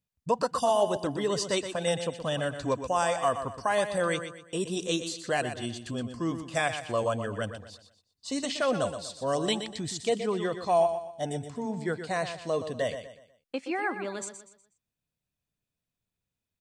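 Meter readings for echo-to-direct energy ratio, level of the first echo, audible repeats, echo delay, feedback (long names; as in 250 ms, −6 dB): −9.0 dB, −9.5 dB, 3, 122 ms, 36%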